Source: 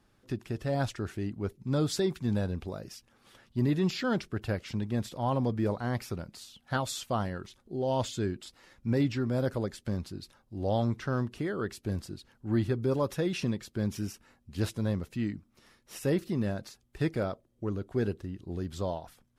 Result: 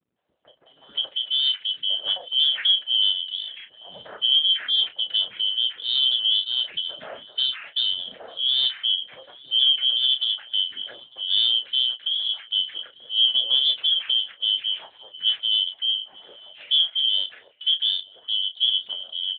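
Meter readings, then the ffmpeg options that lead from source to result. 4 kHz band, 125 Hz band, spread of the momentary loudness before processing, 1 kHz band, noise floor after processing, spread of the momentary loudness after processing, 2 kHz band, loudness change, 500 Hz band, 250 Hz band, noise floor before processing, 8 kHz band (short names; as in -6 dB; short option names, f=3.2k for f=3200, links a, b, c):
+28.5 dB, under -30 dB, 12 LU, under -10 dB, -55 dBFS, 12 LU, +1.0 dB, +11.5 dB, -16.0 dB, under -25 dB, -69 dBFS, under -35 dB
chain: -filter_complex "[0:a]afftfilt=real='real(if(lt(b,272),68*(eq(floor(b/68),0)*2+eq(floor(b/68),1)*3+eq(floor(b/68),2)*0+eq(floor(b/68),3)*1)+mod(b,68),b),0)':imag='imag(if(lt(b,272),68*(eq(floor(b/68),0)*2+eq(floor(b/68),1)*3+eq(floor(b/68),2)*0+eq(floor(b/68),3)*1)+mod(b,68),b),0)':win_size=2048:overlap=0.75,acrossover=split=160|2800[a][b][c];[c]acontrast=84[d];[a][b][d]amix=inputs=3:normalize=0,equalizer=f=100:t=o:w=0.67:g=-8,equalizer=f=630:t=o:w=0.67:g=7,equalizer=f=1.6k:t=o:w=0.67:g=7,asplit=2[e][f];[f]adelay=896,lowpass=f=1.5k:p=1,volume=-18dB,asplit=2[g][h];[h]adelay=896,lowpass=f=1.5k:p=1,volume=0.21[i];[g][i]amix=inputs=2:normalize=0[j];[e][j]amix=inputs=2:normalize=0,adynamicequalizer=threshold=0.00178:dfrequency=690:dqfactor=5.8:tfrequency=690:tqfactor=5.8:attack=5:release=100:ratio=0.375:range=2:mode=cutabove:tftype=bell,asplit=2[k][l];[l]adelay=32,volume=-8dB[m];[k][m]amix=inputs=2:normalize=0,acrossover=split=280|1300[n][o][p];[o]adelay=160[q];[p]adelay=660[r];[n][q][r]amix=inputs=3:normalize=0,volume=2dB" -ar 8000 -c:a libopencore_amrnb -b:a 12200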